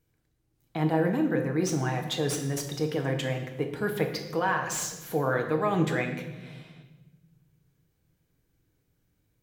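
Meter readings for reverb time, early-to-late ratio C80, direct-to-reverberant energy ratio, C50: 1.1 s, 9.5 dB, 3.0 dB, 7.5 dB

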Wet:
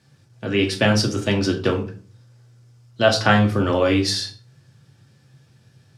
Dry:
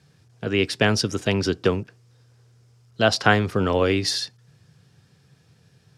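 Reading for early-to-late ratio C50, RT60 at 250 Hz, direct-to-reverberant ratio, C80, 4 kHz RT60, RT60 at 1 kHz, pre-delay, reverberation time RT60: 11.0 dB, 0.55 s, 1.0 dB, 16.0 dB, 0.30 s, 0.40 s, 3 ms, 0.45 s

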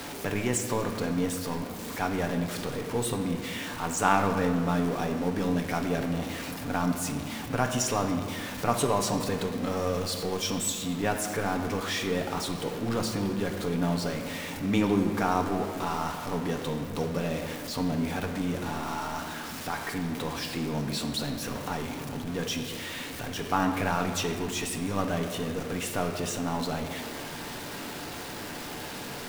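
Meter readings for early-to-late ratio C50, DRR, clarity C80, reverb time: 7.0 dB, 4.0 dB, 8.0 dB, 2.0 s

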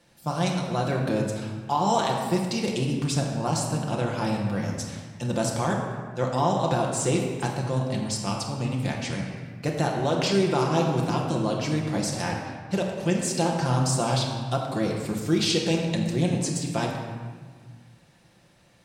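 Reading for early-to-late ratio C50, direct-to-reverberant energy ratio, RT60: 2.5 dB, -1.0 dB, 1.6 s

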